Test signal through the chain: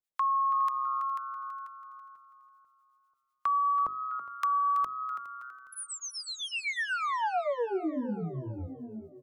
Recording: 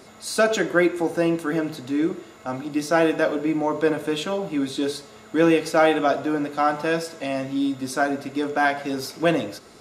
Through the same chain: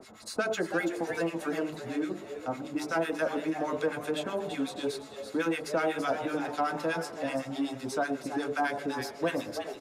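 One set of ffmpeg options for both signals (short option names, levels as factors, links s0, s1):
-filter_complex "[0:a]acrossover=split=1100[s0][s1];[s0]aeval=exprs='val(0)*(1-1/2+1/2*cos(2*PI*8*n/s))':c=same[s2];[s1]aeval=exprs='val(0)*(1-1/2-1/2*cos(2*PI*8*n/s))':c=same[s3];[s2][s3]amix=inputs=2:normalize=0,bandreject=f=50:t=h:w=6,bandreject=f=100:t=h:w=6,bandreject=f=150:t=h:w=6,bandreject=f=200:t=h:w=6,bandreject=f=250:t=h:w=6,bandreject=f=300:t=h:w=6,bandreject=f=350:t=h:w=6,bandreject=f=400:t=h:w=6,asplit=2[s4][s5];[s5]asplit=3[s6][s7][s8];[s6]adelay=329,afreqshift=130,volume=0.224[s9];[s7]adelay=658,afreqshift=260,volume=0.0692[s10];[s8]adelay=987,afreqshift=390,volume=0.0216[s11];[s9][s10][s11]amix=inputs=3:normalize=0[s12];[s4][s12]amix=inputs=2:normalize=0,acrossover=split=260|840|2100|6800[s13][s14][s15][s16][s17];[s13]acompressor=threshold=0.0112:ratio=4[s18];[s14]acompressor=threshold=0.0282:ratio=4[s19];[s15]acompressor=threshold=0.0251:ratio=4[s20];[s16]acompressor=threshold=0.00631:ratio=4[s21];[s17]acompressor=threshold=0.00355:ratio=4[s22];[s18][s19][s20][s21][s22]amix=inputs=5:normalize=0,asplit=2[s23][s24];[s24]aecho=0:1:412|824|1236:0.112|0.0438|0.0171[s25];[s23][s25]amix=inputs=2:normalize=0"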